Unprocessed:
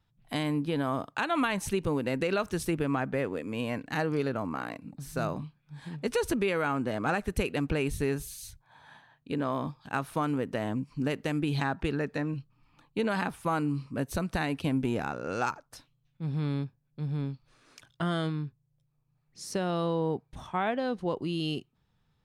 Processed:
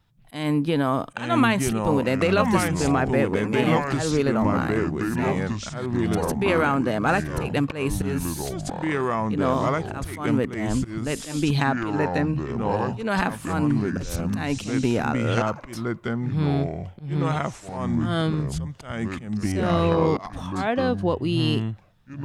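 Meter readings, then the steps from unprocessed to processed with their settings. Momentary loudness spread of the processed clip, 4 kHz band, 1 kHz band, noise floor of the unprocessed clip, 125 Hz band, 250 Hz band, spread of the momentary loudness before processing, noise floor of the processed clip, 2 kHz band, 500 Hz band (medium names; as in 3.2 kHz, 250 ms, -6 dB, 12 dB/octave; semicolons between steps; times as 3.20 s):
9 LU, +6.5 dB, +7.5 dB, -73 dBFS, +9.0 dB, +8.5 dB, 9 LU, -42 dBFS, +7.0 dB, +7.5 dB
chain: slow attack 191 ms; ever faster or slower copies 741 ms, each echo -4 st, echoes 2; trim +7.5 dB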